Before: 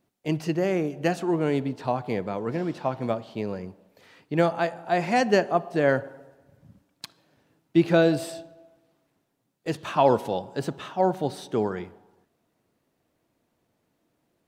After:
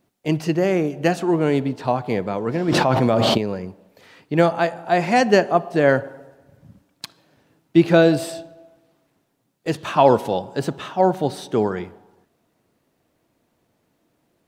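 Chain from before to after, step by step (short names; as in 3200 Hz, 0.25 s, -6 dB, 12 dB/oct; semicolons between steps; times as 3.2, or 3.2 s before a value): 2.68–3.38 fast leveller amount 100%; gain +5.5 dB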